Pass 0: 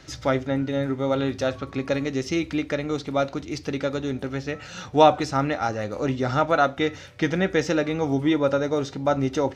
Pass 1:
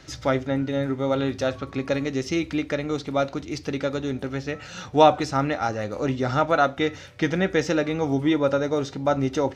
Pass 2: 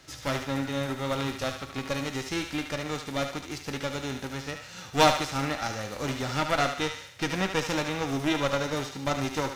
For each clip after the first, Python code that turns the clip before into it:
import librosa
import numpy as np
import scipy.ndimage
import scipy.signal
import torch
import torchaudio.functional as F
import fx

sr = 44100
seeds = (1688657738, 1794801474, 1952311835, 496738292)

y1 = x
y2 = fx.envelope_flatten(y1, sr, power=0.6)
y2 = fx.cheby_harmonics(y2, sr, harmonics=(6,), levels_db=(-15,), full_scale_db=-0.5)
y2 = fx.echo_thinned(y2, sr, ms=74, feedback_pct=52, hz=730.0, wet_db=-6.5)
y2 = y2 * librosa.db_to_amplitude(-6.0)